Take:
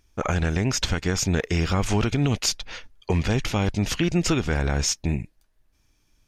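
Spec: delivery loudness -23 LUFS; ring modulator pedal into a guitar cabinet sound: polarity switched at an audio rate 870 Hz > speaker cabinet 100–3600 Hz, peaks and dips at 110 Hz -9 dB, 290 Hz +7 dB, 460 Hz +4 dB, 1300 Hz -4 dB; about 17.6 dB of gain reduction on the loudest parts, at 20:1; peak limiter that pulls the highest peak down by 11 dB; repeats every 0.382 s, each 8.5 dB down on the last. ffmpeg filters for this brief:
-af "acompressor=threshold=-35dB:ratio=20,alimiter=level_in=9.5dB:limit=-24dB:level=0:latency=1,volume=-9.5dB,aecho=1:1:382|764|1146|1528:0.376|0.143|0.0543|0.0206,aeval=exprs='val(0)*sgn(sin(2*PI*870*n/s))':c=same,highpass=100,equalizer=f=110:t=q:w=4:g=-9,equalizer=f=290:t=q:w=4:g=7,equalizer=f=460:t=q:w=4:g=4,equalizer=f=1.3k:t=q:w=4:g=-4,lowpass=f=3.6k:w=0.5412,lowpass=f=3.6k:w=1.3066,volume=21dB"

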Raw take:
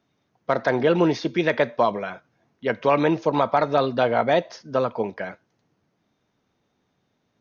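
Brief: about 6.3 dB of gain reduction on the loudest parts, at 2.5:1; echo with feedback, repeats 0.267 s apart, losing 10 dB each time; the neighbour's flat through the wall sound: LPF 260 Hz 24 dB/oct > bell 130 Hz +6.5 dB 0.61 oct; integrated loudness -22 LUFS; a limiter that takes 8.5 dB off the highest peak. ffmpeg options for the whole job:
-af "acompressor=threshold=-24dB:ratio=2.5,alimiter=limit=-19dB:level=0:latency=1,lowpass=f=260:w=0.5412,lowpass=f=260:w=1.3066,equalizer=f=130:t=o:w=0.61:g=6.5,aecho=1:1:267|534|801|1068:0.316|0.101|0.0324|0.0104,volume=15dB"

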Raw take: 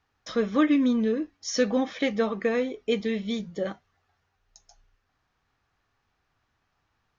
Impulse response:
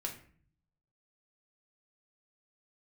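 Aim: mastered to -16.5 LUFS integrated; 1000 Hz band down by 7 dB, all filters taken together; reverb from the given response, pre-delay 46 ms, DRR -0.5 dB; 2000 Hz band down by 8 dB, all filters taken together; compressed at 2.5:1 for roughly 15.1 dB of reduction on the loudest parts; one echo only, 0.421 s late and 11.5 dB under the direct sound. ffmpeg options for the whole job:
-filter_complex "[0:a]equalizer=f=1k:t=o:g=-7.5,equalizer=f=2k:t=o:g=-7.5,acompressor=threshold=-43dB:ratio=2.5,aecho=1:1:421:0.266,asplit=2[a][b];[1:a]atrim=start_sample=2205,adelay=46[c];[b][c]afir=irnorm=-1:irlink=0,volume=0.5dB[d];[a][d]amix=inputs=2:normalize=0,volume=20dB"

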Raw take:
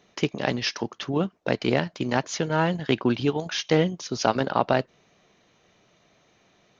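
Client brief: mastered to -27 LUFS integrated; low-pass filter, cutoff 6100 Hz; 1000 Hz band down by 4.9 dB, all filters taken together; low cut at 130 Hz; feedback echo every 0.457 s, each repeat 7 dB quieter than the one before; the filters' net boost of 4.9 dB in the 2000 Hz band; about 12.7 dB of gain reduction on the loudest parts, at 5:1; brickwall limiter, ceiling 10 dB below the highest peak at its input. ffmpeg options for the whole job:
-af "highpass=130,lowpass=6.1k,equalizer=f=1k:t=o:g=-9,equalizer=f=2k:t=o:g=9,acompressor=threshold=-32dB:ratio=5,alimiter=level_in=2dB:limit=-24dB:level=0:latency=1,volume=-2dB,aecho=1:1:457|914|1371|1828|2285:0.447|0.201|0.0905|0.0407|0.0183,volume=11dB"

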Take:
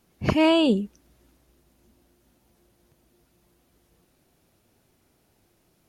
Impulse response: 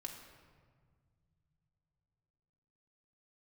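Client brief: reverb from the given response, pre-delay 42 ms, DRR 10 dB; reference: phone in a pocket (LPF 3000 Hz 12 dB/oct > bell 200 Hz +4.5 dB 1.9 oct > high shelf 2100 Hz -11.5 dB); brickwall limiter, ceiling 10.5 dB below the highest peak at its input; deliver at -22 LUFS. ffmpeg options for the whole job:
-filter_complex "[0:a]alimiter=limit=-17dB:level=0:latency=1,asplit=2[a][b];[1:a]atrim=start_sample=2205,adelay=42[c];[b][c]afir=irnorm=-1:irlink=0,volume=-7dB[d];[a][d]amix=inputs=2:normalize=0,lowpass=3k,equalizer=f=200:t=o:w=1.9:g=4.5,highshelf=f=2.1k:g=-11.5,volume=2.5dB"

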